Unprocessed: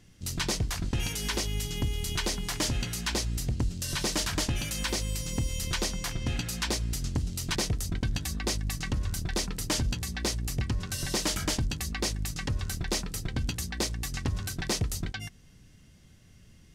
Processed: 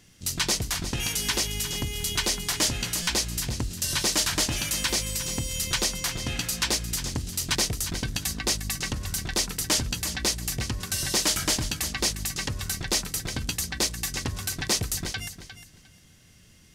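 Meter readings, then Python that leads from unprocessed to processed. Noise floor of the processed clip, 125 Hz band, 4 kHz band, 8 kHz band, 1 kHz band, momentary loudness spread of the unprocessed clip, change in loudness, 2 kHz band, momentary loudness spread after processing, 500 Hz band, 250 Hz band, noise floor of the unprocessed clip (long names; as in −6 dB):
−55 dBFS, −1.5 dB, +6.5 dB, +7.5 dB, +3.5 dB, 4 LU, +4.5 dB, +5.0 dB, 6 LU, +1.5 dB, 0.0 dB, −56 dBFS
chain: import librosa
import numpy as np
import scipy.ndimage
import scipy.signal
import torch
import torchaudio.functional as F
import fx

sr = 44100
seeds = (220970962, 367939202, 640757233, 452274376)

y = fx.tilt_eq(x, sr, slope=1.5)
y = fx.echo_feedback(y, sr, ms=354, feedback_pct=20, wet_db=-11.5)
y = fx.buffer_glitch(y, sr, at_s=(3.02,), block=256, repeats=8)
y = y * librosa.db_to_amplitude(3.0)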